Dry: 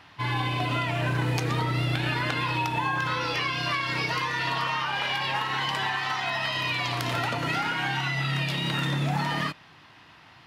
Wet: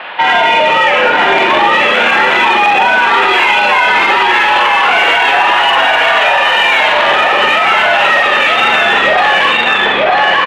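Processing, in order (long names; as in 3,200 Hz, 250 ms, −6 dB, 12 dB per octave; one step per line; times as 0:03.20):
double-tracking delay 44 ms −4.5 dB
single-tap delay 931 ms −4 dB
single-sideband voice off tune −110 Hz 480–3,500 Hz
in parallel at −5.5 dB: soft clipping −30.5 dBFS, distortion −8 dB
on the sum: boost into a limiter +24 dB
level −1 dB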